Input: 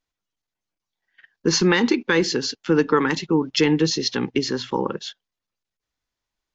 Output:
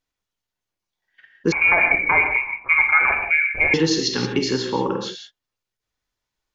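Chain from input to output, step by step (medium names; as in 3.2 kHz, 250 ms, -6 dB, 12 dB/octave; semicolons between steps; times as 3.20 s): gated-style reverb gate 200 ms flat, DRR 2 dB; 1.52–3.74 s: frequency inversion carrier 2.6 kHz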